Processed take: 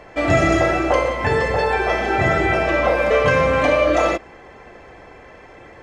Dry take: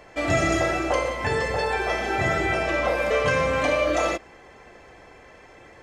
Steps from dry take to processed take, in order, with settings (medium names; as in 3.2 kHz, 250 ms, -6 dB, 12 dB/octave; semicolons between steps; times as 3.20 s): treble shelf 4.3 kHz -10.5 dB; trim +6.5 dB